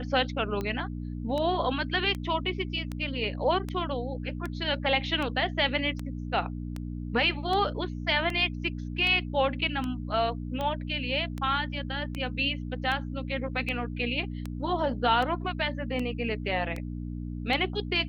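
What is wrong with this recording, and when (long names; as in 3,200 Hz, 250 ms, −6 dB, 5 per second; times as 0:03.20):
mains hum 60 Hz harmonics 5 −35 dBFS
scratch tick 78 rpm −20 dBFS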